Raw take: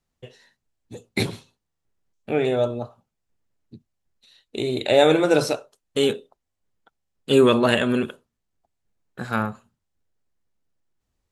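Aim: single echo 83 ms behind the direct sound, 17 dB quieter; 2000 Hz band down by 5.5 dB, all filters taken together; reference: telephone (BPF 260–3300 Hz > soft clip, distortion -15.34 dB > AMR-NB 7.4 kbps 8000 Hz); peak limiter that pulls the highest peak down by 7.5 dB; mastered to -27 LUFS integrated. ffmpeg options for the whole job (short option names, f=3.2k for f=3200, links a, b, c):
-af "equalizer=f=2k:t=o:g=-7,alimiter=limit=-12dB:level=0:latency=1,highpass=260,lowpass=3.3k,aecho=1:1:83:0.141,asoftclip=threshold=-18dB,volume=2dB" -ar 8000 -c:a libopencore_amrnb -b:a 7400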